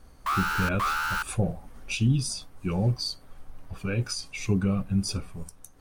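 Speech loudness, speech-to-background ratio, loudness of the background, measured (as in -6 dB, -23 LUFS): -29.0 LUFS, -0.5 dB, -28.5 LUFS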